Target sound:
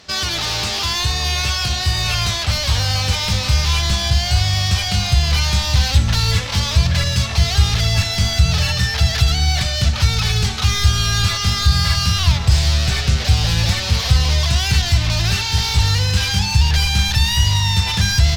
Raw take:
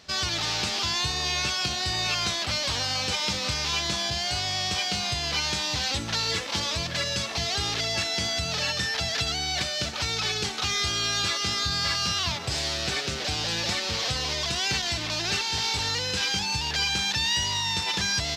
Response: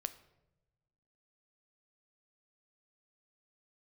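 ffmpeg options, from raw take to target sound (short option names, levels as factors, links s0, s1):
-filter_complex "[0:a]volume=15.8,asoftclip=hard,volume=0.0631[s0];[1:a]atrim=start_sample=2205,asetrate=34839,aresample=44100[s1];[s0][s1]afir=irnorm=-1:irlink=0,asubboost=boost=11.5:cutoff=96,volume=2.37"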